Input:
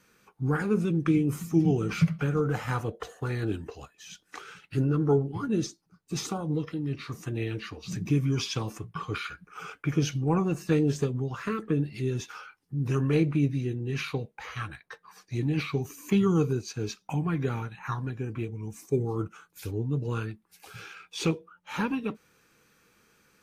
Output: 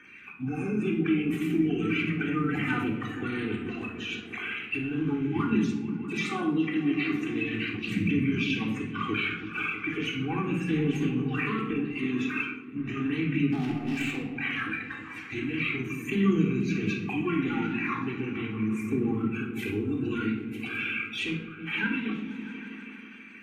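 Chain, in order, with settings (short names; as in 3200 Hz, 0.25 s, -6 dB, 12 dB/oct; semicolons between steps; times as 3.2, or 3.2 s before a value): bin magnitudes rounded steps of 30 dB; HPF 83 Hz 24 dB/oct; resonant high shelf 3600 Hz -10.5 dB, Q 3; 0.51–0.74 spectral repair 980–6600 Hz after; ten-band EQ 125 Hz -12 dB, 250 Hz +11 dB, 500 Hz -11 dB, 1000 Hz -5 dB, 2000 Hz +8 dB, 4000 Hz +4 dB, 8000 Hz +4 dB; in parallel at +2 dB: compressor, threshold -40 dBFS, peak gain reduction 20 dB; on the sum: limiter -21.5 dBFS, peak gain reduction 10.5 dB; phaser 0.37 Hz, delay 3.7 ms, feedback 40%; 13.52–14.36 hard clip -30 dBFS, distortion -19 dB; on a send: repeats that get brighter 0.161 s, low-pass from 200 Hz, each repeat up 1 oct, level -6 dB; on the sum: shoebox room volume 1900 m³, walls furnished, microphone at 3.6 m; 11.73–12.97 three-band expander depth 70%; gain -4 dB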